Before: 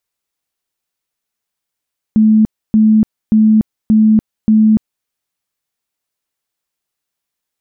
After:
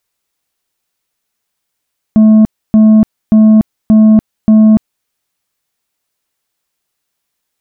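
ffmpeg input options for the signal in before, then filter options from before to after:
-f lavfi -i "aevalsrc='0.531*sin(2*PI*217*mod(t,0.58))*lt(mod(t,0.58),63/217)':d=2.9:s=44100"
-af "acontrast=87"

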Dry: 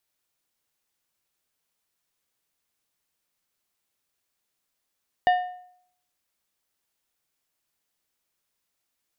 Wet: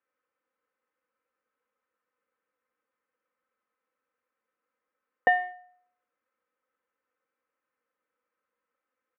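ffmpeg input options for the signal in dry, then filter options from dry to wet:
-f lavfi -i "aevalsrc='0.2*pow(10,-3*t/0.65)*sin(2*PI*725*t)+0.0708*pow(10,-3*t/0.494)*sin(2*PI*1812.5*t)+0.0251*pow(10,-3*t/0.429)*sin(2*PI*2900*t)+0.00891*pow(10,-3*t/0.401)*sin(2*PI*3625*t)+0.00316*pow(10,-3*t/0.371)*sin(2*PI*4712.5*t)':d=1.55:s=44100"
-filter_complex "[0:a]aecho=1:1:3.9:0.74,asplit=2[a][b];[b]aeval=exprs='sgn(val(0))*max(abs(val(0))-0.02,0)':c=same,volume=-10dB[c];[a][c]amix=inputs=2:normalize=0,highpass=160,equalizer=f=180:t=q:w=4:g=-7,equalizer=f=270:t=q:w=4:g=-4,equalizer=f=500:t=q:w=4:g=8,equalizer=f=730:t=q:w=4:g=-9,equalizer=f=1.3k:t=q:w=4:g=6,lowpass=f=2k:w=0.5412,lowpass=f=2k:w=1.3066"

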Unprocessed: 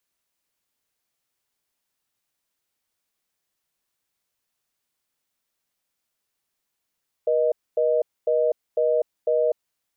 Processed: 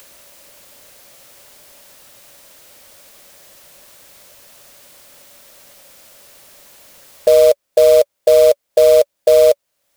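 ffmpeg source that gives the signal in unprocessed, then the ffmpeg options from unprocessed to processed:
-f lavfi -i "aevalsrc='0.0944*(sin(2*PI*480*t)+sin(2*PI*620*t))*clip(min(mod(t,0.5),0.25-mod(t,0.5))/0.005,0,1)':d=2.35:s=44100"
-filter_complex "[0:a]equalizer=f=570:w=4.8:g=12.5,asplit=2[a][b];[b]acompressor=mode=upward:threshold=-18dB:ratio=2.5,volume=0dB[c];[a][c]amix=inputs=2:normalize=0,acrusher=bits=4:mode=log:mix=0:aa=0.000001"

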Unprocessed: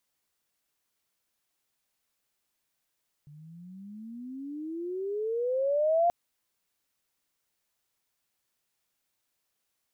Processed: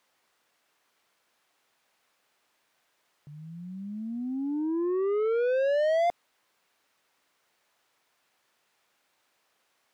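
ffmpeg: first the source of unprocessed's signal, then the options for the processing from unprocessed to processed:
-f lavfi -i "aevalsrc='pow(10,(-20+27*(t/2.83-1))/20)*sin(2*PI*144*2.83/(27.5*log(2)/12)*(exp(27.5*log(2)/12*t/2.83)-1))':d=2.83:s=44100"
-filter_complex "[0:a]asplit=2[a][b];[b]highpass=f=720:p=1,volume=24dB,asoftclip=type=tanh:threshold=-20dB[c];[a][c]amix=inputs=2:normalize=0,lowpass=f=1.4k:p=1,volume=-6dB"

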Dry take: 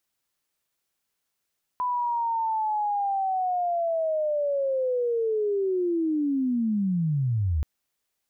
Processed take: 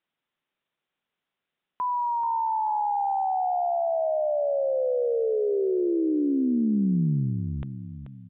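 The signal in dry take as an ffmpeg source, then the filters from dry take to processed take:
-f lavfi -i "aevalsrc='pow(10,(-23.5+2*t/5.83)/20)*sin(2*PI*(1000*t-931*t*t/(2*5.83)))':d=5.83:s=44100"
-filter_complex "[0:a]lowshelf=f=120:t=q:w=1.5:g=-7,asplit=2[a][b];[b]aecho=0:1:434|868|1302|1736:0.316|0.133|0.0558|0.0234[c];[a][c]amix=inputs=2:normalize=0,aresample=8000,aresample=44100"

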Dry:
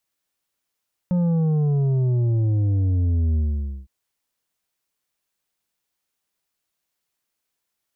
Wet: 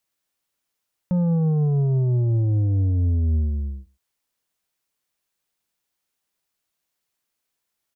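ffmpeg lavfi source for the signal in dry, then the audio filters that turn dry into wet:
-f lavfi -i "aevalsrc='0.126*clip((2.76-t)/0.51,0,1)*tanh(2.24*sin(2*PI*180*2.76/log(65/180)*(exp(log(65/180)*t/2.76)-1)))/tanh(2.24)':d=2.76:s=44100"
-af "aecho=1:1:112:0.0631"

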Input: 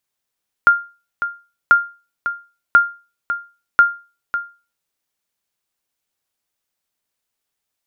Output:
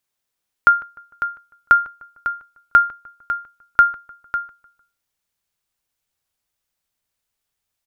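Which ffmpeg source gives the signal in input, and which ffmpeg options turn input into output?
-f lavfi -i "aevalsrc='0.75*(sin(2*PI*1400*mod(t,1.04))*exp(-6.91*mod(t,1.04)/0.32)+0.282*sin(2*PI*1400*max(mod(t,1.04)-0.55,0))*exp(-6.91*max(mod(t,1.04)-0.55,0)/0.32))':d=4.16:s=44100"
-filter_complex "[0:a]asubboost=boost=2:cutoff=160,asplit=2[a][b];[b]adelay=151,lowpass=f=2k:p=1,volume=-20.5dB,asplit=2[c][d];[d]adelay=151,lowpass=f=2k:p=1,volume=0.47,asplit=2[e][f];[f]adelay=151,lowpass=f=2k:p=1,volume=0.47[g];[a][c][e][g]amix=inputs=4:normalize=0"

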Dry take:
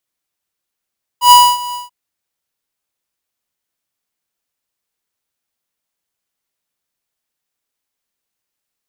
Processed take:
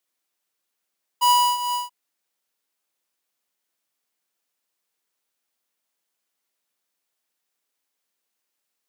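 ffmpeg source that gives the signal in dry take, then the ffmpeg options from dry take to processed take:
-f lavfi -i "aevalsrc='0.668*(2*lt(mod(979*t,1),0.5)-1)':d=0.686:s=44100,afade=t=in:d=0.103,afade=t=out:st=0.103:d=0.26:silence=0.106,afade=t=out:st=0.53:d=0.156"
-af "highpass=220,acompressor=threshold=-20dB:ratio=3"

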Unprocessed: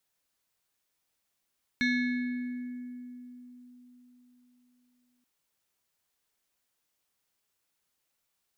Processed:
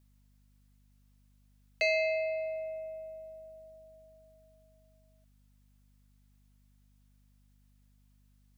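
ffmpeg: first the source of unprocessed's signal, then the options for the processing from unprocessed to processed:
-f lavfi -i "aevalsrc='0.0708*pow(10,-3*t/4.19)*sin(2*PI*247*t+1.3*pow(10,-3*t/2.6)*sin(2*PI*7.91*247*t))':d=3.43:s=44100"
-af "afreqshift=390,aeval=exprs='val(0)+0.000631*(sin(2*PI*50*n/s)+sin(2*PI*2*50*n/s)/2+sin(2*PI*3*50*n/s)/3+sin(2*PI*4*50*n/s)/4+sin(2*PI*5*50*n/s)/5)':c=same"

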